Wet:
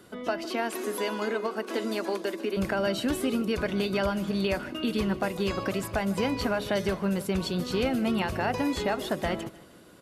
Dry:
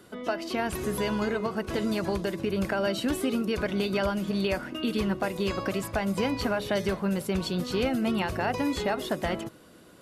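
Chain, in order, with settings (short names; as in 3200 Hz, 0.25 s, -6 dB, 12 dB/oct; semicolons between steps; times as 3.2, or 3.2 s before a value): 0.45–2.57 steep high-pass 230 Hz 48 dB/oct; feedback echo 0.152 s, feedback 42%, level -19 dB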